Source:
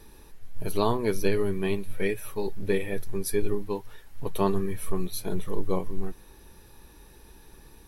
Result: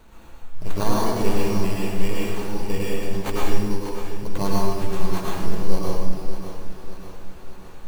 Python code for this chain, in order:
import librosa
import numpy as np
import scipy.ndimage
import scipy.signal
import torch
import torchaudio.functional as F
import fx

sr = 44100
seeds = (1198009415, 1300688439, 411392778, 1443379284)

p1 = fx.graphic_eq_15(x, sr, hz=(400, 1600, 6300), db=(-6, -12, 7))
p2 = fx.sample_hold(p1, sr, seeds[0], rate_hz=5200.0, jitter_pct=0)
p3 = p2 + fx.echo_feedback(p2, sr, ms=593, feedback_pct=52, wet_db=-10.5, dry=0)
y = fx.rev_plate(p3, sr, seeds[1], rt60_s=1.2, hf_ratio=0.85, predelay_ms=90, drr_db=-5.0)